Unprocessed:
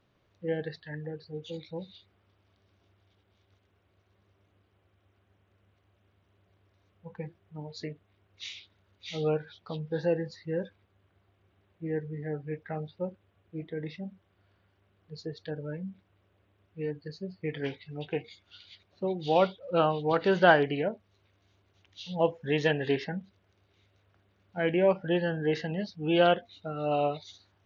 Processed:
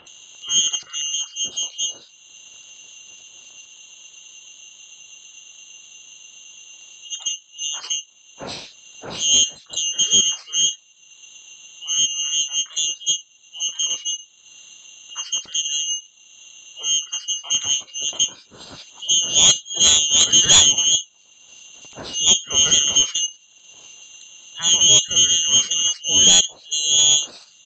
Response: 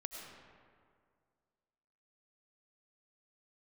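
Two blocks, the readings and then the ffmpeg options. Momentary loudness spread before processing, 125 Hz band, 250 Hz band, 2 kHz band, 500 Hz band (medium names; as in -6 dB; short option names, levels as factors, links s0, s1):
18 LU, -4.5 dB, -6.5 dB, +2.5 dB, -11.0 dB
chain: -filter_complex "[0:a]afftfilt=real='real(if(lt(b,272),68*(eq(floor(b/68),0)*1+eq(floor(b/68),1)*2+eq(floor(b/68),2)*3+eq(floor(b/68),3)*0)+mod(b,68),b),0)':imag='imag(if(lt(b,272),68*(eq(floor(b/68),0)*1+eq(floor(b/68),1)*2+eq(floor(b/68),2)*3+eq(floor(b/68),3)*0)+mod(b,68),b),0)':win_size=2048:overlap=0.75,bass=f=250:g=-7,treble=f=4000:g=13,aeval=exprs='val(0)*sin(2*PI*1700*n/s)':c=same,highpass=f=62:p=1,acrossover=split=1900[s0][s1];[s1]adelay=70[s2];[s0][s2]amix=inputs=2:normalize=0,asplit=2[s3][s4];[s4]acompressor=mode=upward:threshold=0.0355:ratio=2.5,volume=0.794[s5];[s3][s5]amix=inputs=2:normalize=0,adynamicequalizer=threshold=0.00316:dfrequency=150:dqfactor=0.72:tfrequency=150:tqfactor=0.72:attack=5:release=100:ratio=0.375:range=2:mode=boostabove:tftype=bell,aresample=16000,asoftclip=type=tanh:threshold=0.316,aresample=44100,volume=1.5"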